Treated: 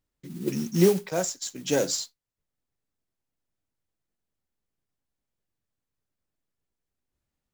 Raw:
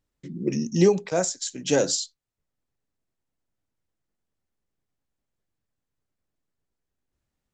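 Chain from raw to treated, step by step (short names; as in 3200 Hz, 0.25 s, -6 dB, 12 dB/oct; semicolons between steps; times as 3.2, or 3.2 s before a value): 0.61–1.17 comb 5.4 ms, depth 33%; modulation noise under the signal 17 dB; gain -3 dB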